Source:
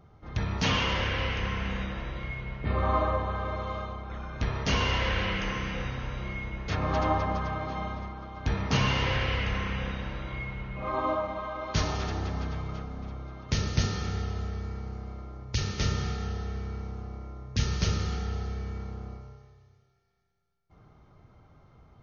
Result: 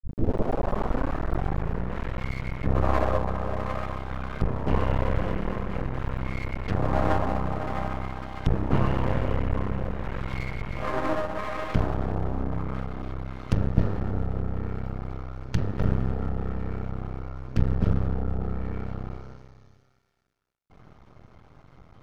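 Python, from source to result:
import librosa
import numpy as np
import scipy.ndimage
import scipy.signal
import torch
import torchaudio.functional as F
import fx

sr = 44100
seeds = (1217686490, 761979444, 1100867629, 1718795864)

y = fx.tape_start_head(x, sr, length_s=1.98)
y = fx.env_lowpass_down(y, sr, base_hz=830.0, full_db=-28.0)
y = np.maximum(y, 0.0)
y = y * 10.0 ** (8.5 / 20.0)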